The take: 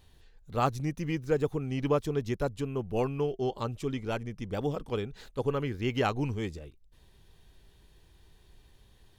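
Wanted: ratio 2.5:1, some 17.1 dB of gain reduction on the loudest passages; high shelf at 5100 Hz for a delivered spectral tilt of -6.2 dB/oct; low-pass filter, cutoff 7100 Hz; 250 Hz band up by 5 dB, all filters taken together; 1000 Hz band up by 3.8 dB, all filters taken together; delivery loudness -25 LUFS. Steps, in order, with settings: LPF 7100 Hz; bell 250 Hz +6 dB; bell 1000 Hz +5 dB; high shelf 5100 Hz -6 dB; compressor 2.5:1, threshold -46 dBFS; gain +18.5 dB

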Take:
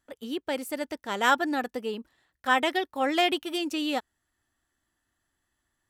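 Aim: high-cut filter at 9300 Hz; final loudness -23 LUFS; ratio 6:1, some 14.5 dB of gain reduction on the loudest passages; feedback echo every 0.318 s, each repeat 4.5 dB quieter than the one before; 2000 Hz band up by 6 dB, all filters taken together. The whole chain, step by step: LPF 9300 Hz; bell 2000 Hz +7.5 dB; compressor 6:1, threshold -29 dBFS; feedback echo 0.318 s, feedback 60%, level -4.5 dB; gain +9.5 dB

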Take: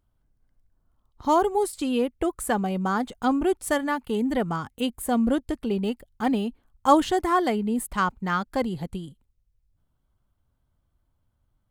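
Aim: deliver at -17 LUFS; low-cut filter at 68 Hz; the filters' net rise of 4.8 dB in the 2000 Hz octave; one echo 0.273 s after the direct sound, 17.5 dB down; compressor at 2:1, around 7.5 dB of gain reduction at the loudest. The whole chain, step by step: HPF 68 Hz; bell 2000 Hz +6.5 dB; compressor 2:1, threshold -25 dBFS; echo 0.273 s -17.5 dB; gain +11 dB

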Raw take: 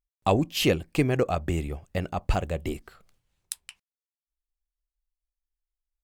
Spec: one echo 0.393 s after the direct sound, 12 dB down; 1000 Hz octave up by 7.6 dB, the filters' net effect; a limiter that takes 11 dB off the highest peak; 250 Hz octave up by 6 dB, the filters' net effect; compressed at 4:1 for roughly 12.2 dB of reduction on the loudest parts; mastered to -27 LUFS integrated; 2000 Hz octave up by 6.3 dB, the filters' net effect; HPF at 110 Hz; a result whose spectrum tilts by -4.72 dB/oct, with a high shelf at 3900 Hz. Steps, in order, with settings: HPF 110 Hz; bell 250 Hz +7.5 dB; bell 1000 Hz +9 dB; bell 2000 Hz +5 dB; high shelf 3900 Hz +3 dB; compressor 4:1, threshold -27 dBFS; limiter -20 dBFS; echo 0.393 s -12 dB; gain +7 dB

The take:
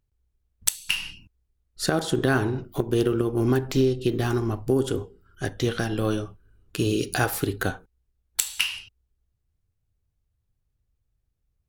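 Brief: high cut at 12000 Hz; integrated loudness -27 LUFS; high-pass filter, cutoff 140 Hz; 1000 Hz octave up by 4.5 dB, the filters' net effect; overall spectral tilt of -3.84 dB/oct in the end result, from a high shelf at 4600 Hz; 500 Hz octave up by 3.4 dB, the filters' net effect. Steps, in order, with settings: HPF 140 Hz; LPF 12000 Hz; bell 500 Hz +4 dB; bell 1000 Hz +4.5 dB; high shelf 4600 Hz +5 dB; gain -3.5 dB

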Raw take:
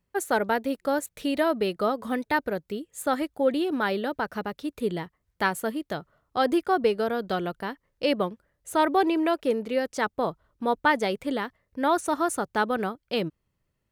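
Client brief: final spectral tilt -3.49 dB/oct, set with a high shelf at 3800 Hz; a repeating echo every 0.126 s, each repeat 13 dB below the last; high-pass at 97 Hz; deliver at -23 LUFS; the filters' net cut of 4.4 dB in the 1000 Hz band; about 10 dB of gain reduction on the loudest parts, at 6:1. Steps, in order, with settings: HPF 97 Hz; bell 1000 Hz -6.5 dB; high shelf 3800 Hz +7 dB; compressor 6:1, threshold -30 dBFS; feedback echo 0.126 s, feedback 22%, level -13 dB; gain +12 dB

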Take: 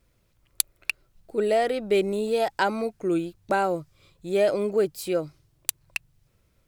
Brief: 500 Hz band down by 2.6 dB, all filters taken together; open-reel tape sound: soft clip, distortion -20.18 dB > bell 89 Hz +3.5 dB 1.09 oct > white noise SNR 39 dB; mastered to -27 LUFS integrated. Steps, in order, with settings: bell 500 Hz -3.5 dB; soft clip -11 dBFS; bell 89 Hz +3.5 dB 1.09 oct; white noise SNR 39 dB; gain +1.5 dB

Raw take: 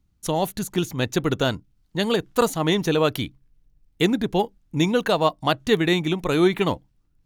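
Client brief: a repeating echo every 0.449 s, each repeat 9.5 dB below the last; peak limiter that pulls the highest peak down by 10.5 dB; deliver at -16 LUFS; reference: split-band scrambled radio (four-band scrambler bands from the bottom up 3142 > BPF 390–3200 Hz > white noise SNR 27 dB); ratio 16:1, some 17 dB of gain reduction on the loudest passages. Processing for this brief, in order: compressor 16:1, threshold -31 dBFS; limiter -27.5 dBFS; feedback echo 0.449 s, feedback 33%, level -9.5 dB; four-band scrambler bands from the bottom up 3142; BPF 390–3200 Hz; white noise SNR 27 dB; gain +21.5 dB

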